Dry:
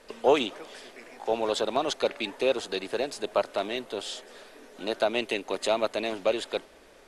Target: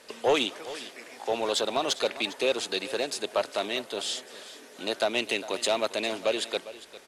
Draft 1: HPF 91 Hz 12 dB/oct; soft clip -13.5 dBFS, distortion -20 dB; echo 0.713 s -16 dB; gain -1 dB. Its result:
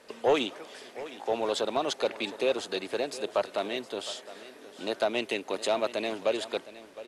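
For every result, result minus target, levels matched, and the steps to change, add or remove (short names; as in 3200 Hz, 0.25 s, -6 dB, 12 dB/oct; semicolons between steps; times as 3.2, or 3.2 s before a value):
echo 0.31 s late; 4000 Hz band -4.0 dB
change: echo 0.403 s -16 dB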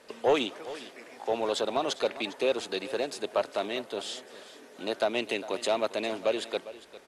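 4000 Hz band -3.5 dB
add after HPF: high shelf 2100 Hz +8 dB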